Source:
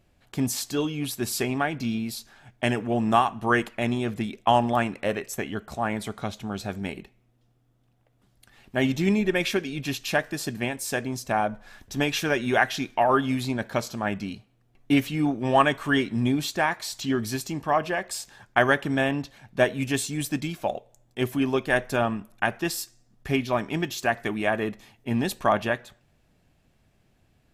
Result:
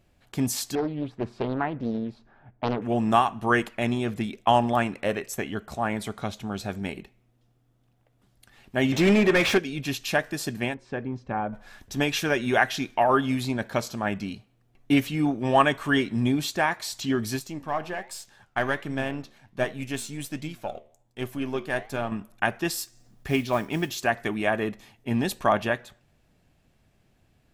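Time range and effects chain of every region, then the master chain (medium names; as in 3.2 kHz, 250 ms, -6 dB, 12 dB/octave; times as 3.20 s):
0.75–2.82 s: low-pass 1.2 kHz + loudspeaker Doppler distortion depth 0.87 ms
8.92–9.58 s: treble shelf 4.9 kHz +8 dB + overdrive pedal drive 24 dB, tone 1.3 kHz, clips at -9.5 dBFS
10.74–11.53 s: tape spacing loss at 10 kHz 43 dB + band-stop 660 Hz, Q 7.4
17.39–22.12 s: partial rectifier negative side -3 dB + flange 1.3 Hz, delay 6.3 ms, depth 7.6 ms, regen +84%
22.77–23.99 s: upward compressor, threshold -47 dBFS + modulation noise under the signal 27 dB
whole clip: none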